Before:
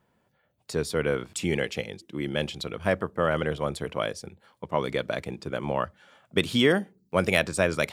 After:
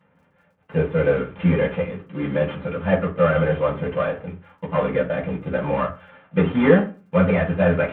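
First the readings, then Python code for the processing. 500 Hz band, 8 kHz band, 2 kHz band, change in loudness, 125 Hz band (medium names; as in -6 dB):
+7.0 dB, under -40 dB, +2.0 dB, +6.5 dB, +10.0 dB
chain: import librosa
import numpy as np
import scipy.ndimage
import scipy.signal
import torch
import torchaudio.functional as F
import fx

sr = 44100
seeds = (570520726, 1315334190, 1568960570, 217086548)

y = fx.cvsd(x, sr, bps=16000)
y = fx.dmg_crackle(y, sr, seeds[0], per_s=23.0, level_db=-60.0)
y = fx.rev_fdn(y, sr, rt60_s=0.34, lf_ratio=1.1, hf_ratio=0.55, size_ms=34.0, drr_db=-7.0)
y = y * 10.0 ** (-1.0 / 20.0)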